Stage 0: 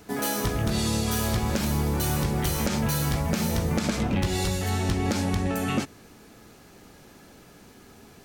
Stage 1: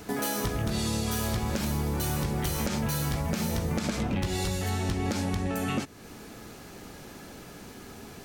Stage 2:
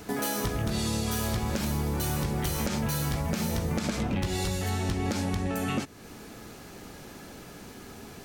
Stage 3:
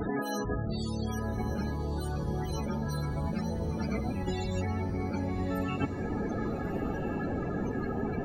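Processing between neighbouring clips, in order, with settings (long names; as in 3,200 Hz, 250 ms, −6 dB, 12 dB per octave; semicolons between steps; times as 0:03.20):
downward compressor 2 to 1, threshold −39 dBFS, peak gain reduction 10.5 dB; level +5.5 dB
no processing that can be heard
compressor whose output falls as the input rises −37 dBFS, ratio −1; spectral peaks only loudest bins 32; feedback delay with all-pass diffusion 1,234 ms, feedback 52%, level −9.5 dB; level +6 dB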